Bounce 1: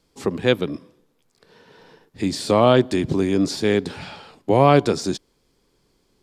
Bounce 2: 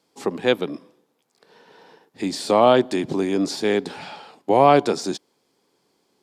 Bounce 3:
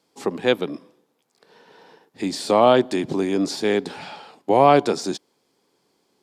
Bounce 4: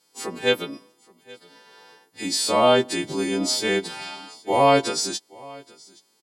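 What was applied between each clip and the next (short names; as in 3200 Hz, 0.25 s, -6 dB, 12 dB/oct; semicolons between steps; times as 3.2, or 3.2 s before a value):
HPF 210 Hz 12 dB/oct; bell 800 Hz +5.5 dB 0.52 oct; gain -1 dB
nothing audible
frequency quantiser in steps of 2 st; echo 0.823 s -23.5 dB; harmonic-percussive split harmonic +6 dB; gain -7.5 dB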